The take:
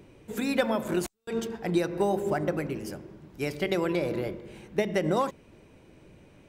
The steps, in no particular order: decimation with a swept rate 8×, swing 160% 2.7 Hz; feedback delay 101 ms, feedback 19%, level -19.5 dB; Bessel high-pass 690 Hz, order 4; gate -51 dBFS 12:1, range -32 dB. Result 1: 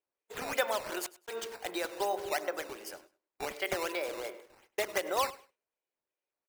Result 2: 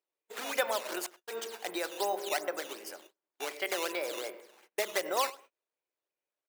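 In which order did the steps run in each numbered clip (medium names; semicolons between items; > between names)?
Bessel high-pass > decimation with a swept rate > gate > feedback delay; feedback delay > decimation with a swept rate > Bessel high-pass > gate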